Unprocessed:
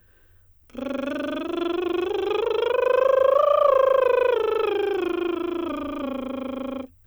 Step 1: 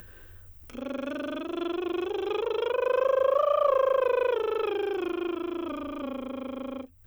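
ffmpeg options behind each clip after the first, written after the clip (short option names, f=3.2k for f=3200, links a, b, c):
-af "acompressor=mode=upward:threshold=-30dB:ratio=2.5,volume=-5.5dB"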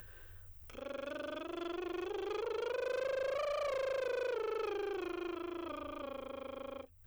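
-af "equalizer=f=240:t=o:w=0.67:g=-14,asoftclip=type=tanh:threshold=-28.5dB,volume=-4.5dB"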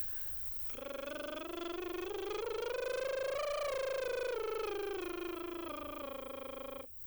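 -af "aemphasis=mode=production:type=50fm,aeval=exprs='0.0794*(cos(1*acos(clip(val(0)/0.0794,-1,1)))-cos(1*PI/2))+0.002*(cos(8*acos(clip(val(0)/0.0794,-1,1)))-cos(8*PI/2))':c=same,asoftclip=type=tanh:threshold=-26.5dB"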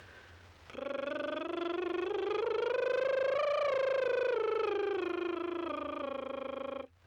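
-af "highpass=110,lowpass=2.9k,volume=6dB"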